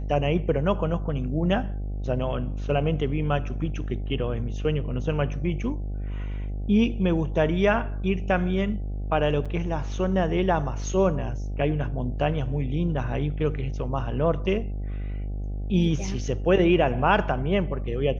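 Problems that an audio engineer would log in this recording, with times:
mains buzz 50 Hz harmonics 16 −30 dBFS
0:09.45–0:09.46: drop-out 5.9 ms

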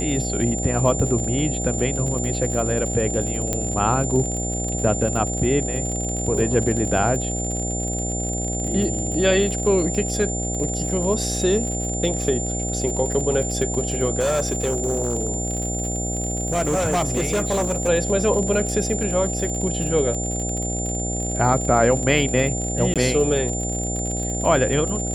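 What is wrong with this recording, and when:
mains buzz 60 Hz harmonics 13 −27 dBFS
surface crackle 61 per second −27 dBFS
whistle 7,200 Hz −27 dBFS
0:03.53: click −8 dBFS
0:14.19–0:17.89: clipping −17 dBFS
0:22.94–0:22.96: drop-out 17 ms

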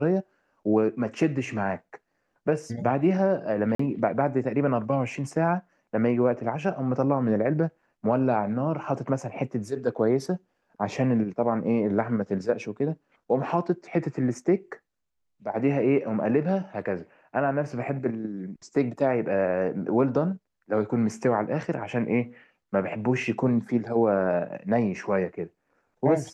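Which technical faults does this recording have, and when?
0:03.75–0:03.79: drop-out 44 ms

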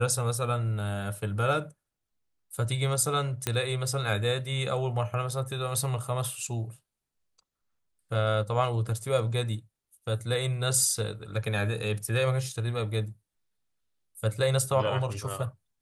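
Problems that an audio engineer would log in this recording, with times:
0:03.47: click −11 dBFS

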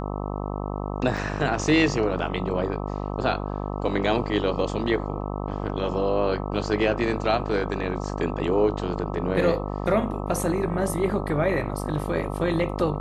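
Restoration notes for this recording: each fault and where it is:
mains buzz 50 Hz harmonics 26 −30 dBFS
0:01.17: drop-out 4.3 ms

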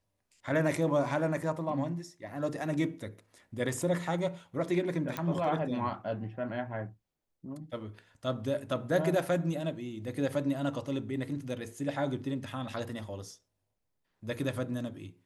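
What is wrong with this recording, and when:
0:05.17: click −18 dBFS

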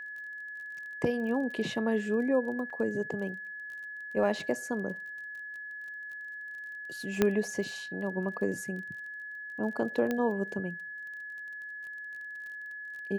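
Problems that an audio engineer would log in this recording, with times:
surface crackle 28 per second −41 dBFS
whistle 1,700 Hz −39 dBFS
0:02.70: drop-out 4.4 ms
0:07.22: click −11 dBFS
0:10.11: click −18 dBFS

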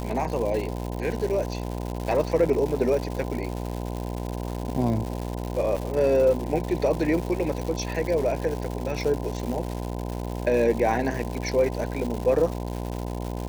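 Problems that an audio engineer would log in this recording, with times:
mains buzz 60 Hz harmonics 17 −31 dBFS
surface crackle 290 per second −30 dBFS
0:05.76–0:05.77: drop-out 6.1 ms

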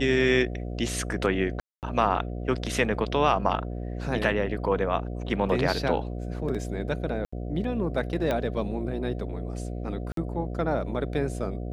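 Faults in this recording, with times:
mains buzz 60 Hz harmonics 12 −33 dBFS
0:01.60–0:01.83: drop-out 228 ms
0:07.25–0:07.33: drop-out 75 ms
0:08.31: click −14 dBFS
0:10.12–0:10.17: drop-out 53 ms

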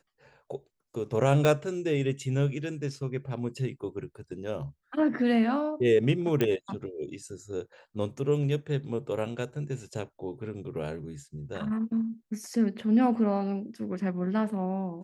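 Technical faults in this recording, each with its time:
0:01.45: click −12 dBFS
0:06.41: click −13 dBFS

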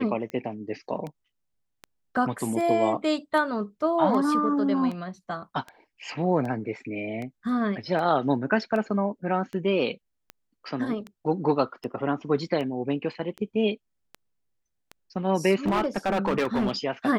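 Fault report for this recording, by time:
scratch tick 78 rpm −23 dBFS
0:15.66–0:16.71: clipping −20 dBFS

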